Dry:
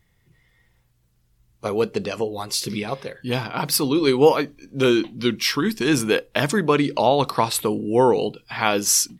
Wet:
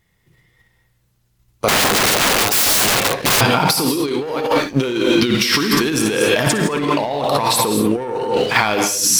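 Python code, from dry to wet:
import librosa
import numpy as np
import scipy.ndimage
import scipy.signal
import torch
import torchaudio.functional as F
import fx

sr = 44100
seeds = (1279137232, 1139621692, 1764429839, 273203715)

p1 = fx.level_steps(x, sr, step_db=15)
p2 = x + F.gain(torch.from_numpy(p1), 1.5).numpy()
p3 = fx.rev_gated(p2, sr, seeds[0], gate_ms=230, shape='rising', drr_db=6.5)
p4 = fx.leveller(p3, sr, passes=2)
p5 = p4 + fx.room_early_taps(p4, sr, ms=(56, 66), db=(-11.0, -11.5), dry=0)
p6 = fx.overflow_wrap(p5, sr, gain_db=13.5, at=(1.68, 3.41))
p7 = fx.low_shelf(p6, sr, hz=130.0, db=-6.5)
p8 = fx.over_compress(p7, sr, threshold_db=-16.0, ratio=-1.0)
y = F.gain(torch.from_numpy(p8), -1.0).numpy()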